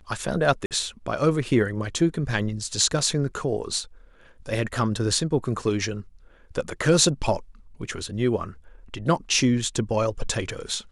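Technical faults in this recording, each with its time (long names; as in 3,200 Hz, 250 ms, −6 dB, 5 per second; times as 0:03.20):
0:00.66–0:00.71: drop-out 48 ms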